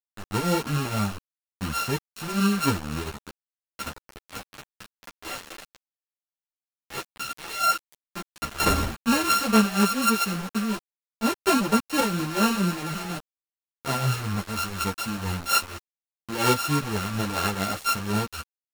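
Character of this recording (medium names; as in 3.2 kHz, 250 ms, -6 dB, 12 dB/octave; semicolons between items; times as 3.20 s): a buzz of ramps at a fixed pitch in blocks of 32 samples; tremolo triangle 4.2 Hz, depth 70%; a quantiser's noise floor 6-bit, dither none; a shimmering, thickened sound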